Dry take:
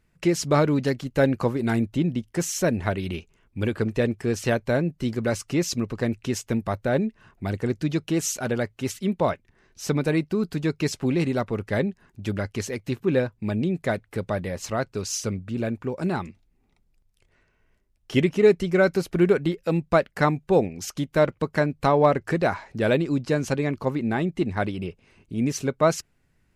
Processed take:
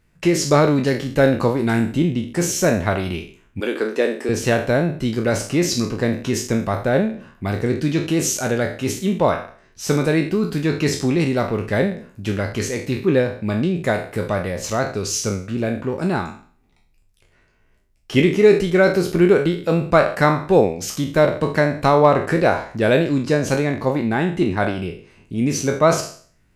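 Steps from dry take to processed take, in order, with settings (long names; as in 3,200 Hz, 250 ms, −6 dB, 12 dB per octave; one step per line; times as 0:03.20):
peak hold with a decay on every bin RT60 0.47 s
0:03.60–0:04.29: high-pass filter 280 Hz 24 dB per octave
level +4 dB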